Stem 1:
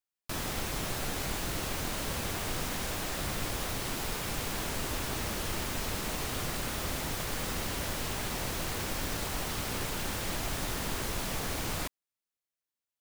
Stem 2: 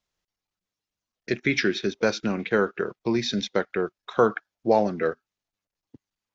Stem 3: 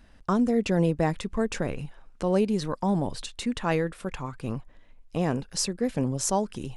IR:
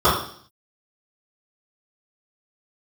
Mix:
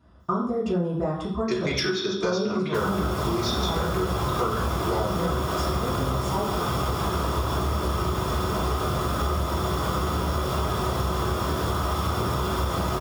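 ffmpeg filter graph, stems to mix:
-filter_complex "[0:a]adelay=2450,volume=0.891,asplit=2[s0][s1];[s1]volume=0.355[s2];[1:a]asoftclip=type=tanh:threshold=0.237,crystalizer=i=8:c=0,adelay=200,volume=0.237,asplit=2[s3][s4];[s4]volume=0.282[s5];[2:a]volume=0.158,asplit=2[s6][s7];[s7]volume=0.531[s8];[3:a]atrim=start_sample=2205[s9];[s2][s5][s8]amix=inputs=3:normalize=0[s10];[s10][s9]afir=irnorm=-1:irlink=0[s11];[s0][s3][s6][s11]amix=inputs=4:normalize=0,acompressor=threshold=0.0794:ratio=6"

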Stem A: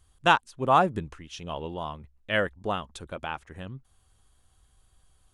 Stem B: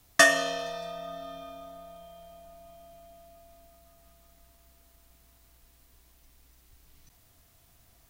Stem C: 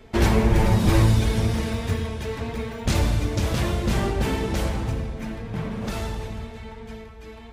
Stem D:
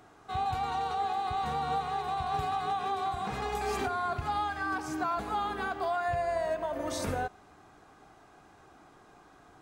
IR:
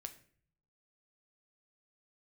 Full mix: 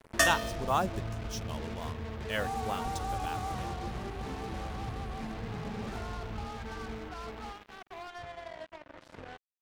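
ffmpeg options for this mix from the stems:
-filter_complex "[0:a]equalizer=f=5600:t=o:w=0.77:g=12,volume=0.355[s0];[1:a]afwtdn=0.0158,aeval=exprs='val(0)+0.00141*(sin(2*PI*50*n/s)+sin(2*PI*2*50*n/s)/2+sin(2*PI*3*50*n/s)/3+sin(2*PI*4*50*n/s)/4+sin(2*PI*5*50*n/s)/5)':c=same,volume=0.422[s1];[2:a]lowpass=2000,acompressor=threshold=0.0501:ratio=6,alimiter=level_in=1.5:limit=0.0631:level=0:latency=1:release=339,volume=0.668,volume=0.708[s2];[3:a]lowpass=2700,adelay=2100,volume=0.531,afade=t=out:st=3.43:d=0.48:silence=0.375837[s3];[s0][s1][s2][s3]amix=inputs=4:normalize=0,highshelf=f=9800:g=10.5,acrusher=bits=6:mix=0:aa=0.5"

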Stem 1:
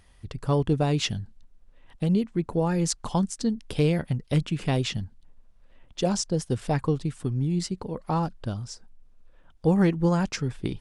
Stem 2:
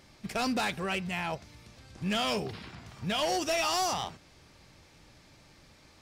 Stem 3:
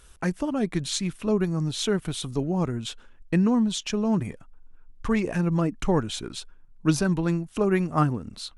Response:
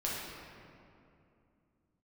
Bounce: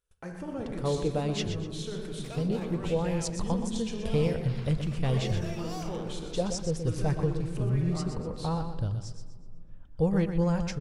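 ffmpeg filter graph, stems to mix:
-filter_complex "[0:a]asubboost=boost=7:cutoff=99,adelay=350,volume=0.398,asplit=3[s0][s1][s2];[s1]volume=0.075[s3];[s2]volume=0.398[s4];[1:a]acompressor=threshold=0.0178:ratio=6,adelay=1950,volume=0.794,asplit=2[s5][s6];[s6]volume=0.1[s7];[2:a]agate=range=0.0562:threshold=0.00501:ratio=16:detection=peak,alimiter=limit=0.119:level=0:latency=1:release=186,volume=0.266,asplit=3[s8][s9][s10];[s9]volume=0.473[s11];[s10]volume=0.316[s12];[s5][s8]amix=inputs=2:normalize=0,alimiter=level_in=5.01:limit=0.0631:level=0:latency=1:release=87,volume=0.2,volume=1[s13];[3:a]atrim=start_sample=2205[s14];[s3][s7][s11]amix=inputs=3:normalize=0[s15];[s15][s14]afir=irnorm=-1:irlink=0[s16];[s4][s12]amix=inputs=2:normalize=0,aecho=0:1:123|246|369|492|615:1|0.34|0.116|0.0393|0.0134[s17];[s0][s13][s16][s17]amix=inputs=4:normalize=0,equalizer=f=490:w=2.6:g=7.5"

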